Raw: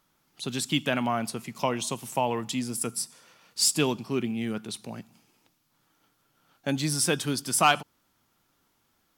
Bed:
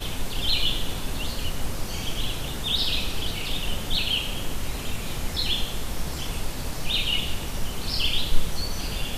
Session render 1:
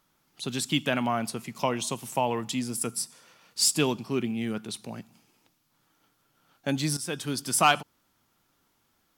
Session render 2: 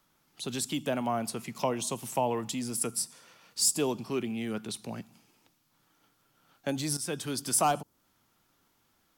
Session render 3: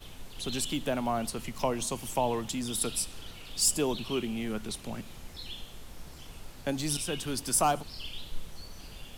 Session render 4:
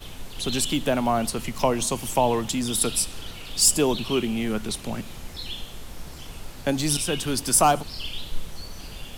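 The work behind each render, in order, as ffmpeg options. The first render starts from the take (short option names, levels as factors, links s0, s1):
-filter_complex "[0:a]asplit=2[s0][s1];[s0]atrim=end=6.97,asetpts=PTS-STARTPTS,afade=t=out:st=6.966:d=0.004:c=hsin:silence=0.199526[s2];[s1]atrim=start=6.97,asetpts=PTS-STARTPTS,afade=t=in:d=0.48:silence=0.199526[s3];[s2][s3]concat=n=2:v=0:a=1"
-filter_complex "[0:a]acrossover=split=330|930|5500[s0][s1][s2][s3];[s0]alimiter=level_in=2.51:limit=0.0631:level=0:latency=1,volume=0.398[s4];[s2]acompressor=threshold=0.01:ratio=6[s5];[s4][s1][s5][s3]amix=inputs=4:normalize=0"
-filter_complex "[1:a]volume=0.15[s0];[0:a][s0]amix=inputs=2:normalize=0"
-af "volume=2.37"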